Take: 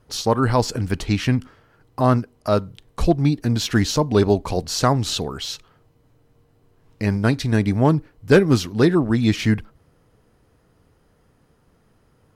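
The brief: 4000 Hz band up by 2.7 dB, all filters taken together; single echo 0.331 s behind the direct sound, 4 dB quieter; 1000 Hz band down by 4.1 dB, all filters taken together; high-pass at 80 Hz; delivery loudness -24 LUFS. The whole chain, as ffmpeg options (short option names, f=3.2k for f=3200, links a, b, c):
-af "highpass=80,equalizer=f=1k:t=o:g=-5.5,equalizer=f=4k:t=o:g=3.5,aecho=1:1:331:0.631,volume=-4.5dB"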